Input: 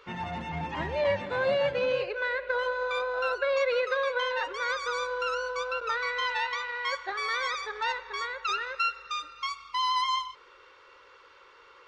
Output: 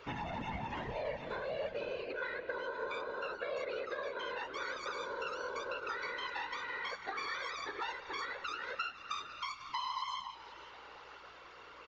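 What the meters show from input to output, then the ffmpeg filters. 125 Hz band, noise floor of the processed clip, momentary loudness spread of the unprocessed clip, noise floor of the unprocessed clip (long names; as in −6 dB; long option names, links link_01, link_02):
can't be measured, −54 dBFS, 7 LU, −56 dBFS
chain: -filter_complex "[0:a]acompressor=threshold=-38dB:ratio=10,aresample=16000,aresample=44100,afftfilt=real='hypot(re,im)*cos(2*PI*random(0))':imag='hypot(re,im)*sin(2*PI*random(1))':win_size=512:overlap=0.75,asplit=2[link_01][link_02];[link_02]asplit=4[link_03][link_04][link_05][link_06];[link_03]adelay=498,afreqshift=-100,volume=-16.5dB[link_07];[link_04]adelay=996,afreqshift=-200,volume=-22.5dB[link_08];[link_05]adelay=1494,afreqshift=-300,volume=-28.5dB[link_09];[link_06]adelay=1992,afreqshift=-400,volume=-34.6dB[link_10];[link_07][link_08][link_09][link_10]amix=inputs=4:normalize=0[link_11];[link_01][link_11]amix=inputs=2:normalize=0,aeval=exprs='val(0)+0.0001*(sin(2*PI*60*n/s)+sin(2*PI*2*60*n/s)/2+sin(2*PI*3*60*n/s)/3+sin(2*PI*4*60*n/s)/4+sin(2*PI*5*60*n/s)/5)':channel_layout=same,volume=7dB"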